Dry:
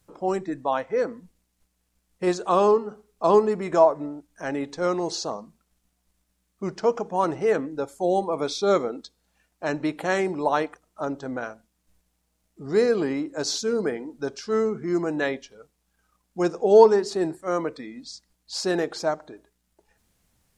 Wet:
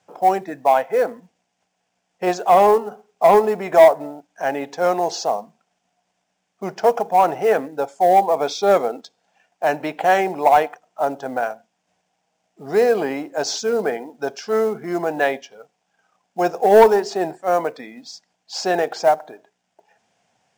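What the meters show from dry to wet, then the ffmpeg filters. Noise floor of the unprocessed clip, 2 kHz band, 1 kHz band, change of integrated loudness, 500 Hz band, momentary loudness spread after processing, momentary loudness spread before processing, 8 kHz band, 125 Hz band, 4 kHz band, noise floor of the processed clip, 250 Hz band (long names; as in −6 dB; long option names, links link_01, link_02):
−74 dBFS, +6.5 dB, +9.5 dB, +5.5 dB, +5.0 dB, 15 LU, 15 LU, +3.0 dB, −1.0 dB, +2.5 dB, −74 dBFS, −0.5 dB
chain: -filter_complex "[0:a]highpass=frequency=110:width=0.5412,highpass=frequency=110:width=1.3066,equalizer=frequency=320:width_type=q:width=4:gain=-6,equalizer=frequency=730:width_type=q:width=4:gain=10,equalizer=frequency=1200:width_type=q:width=4:gain=-7,equalizer=frequency=2000:width_type=q:width=4:gain=-3,equalizer=frequency=4100:width_type=q:width=4:gain=-8,lowpass=frequency=7300:width=0.5412,lowpass=frequency=7300:width=1.3066,asplit=2[link_01][link_02];[link_02]highpass=frequency=720:poles=1,volume=15dB,asoftclip=type=tanh:threshold=-1.5dB[link_03];[link_01][link_03]amix=inputs=2:normalize=0,lowpass=frequency=3500:poles=1,volume=-6dB,acrusher=bits=7:mode=log:mix=0:aa=0.000001"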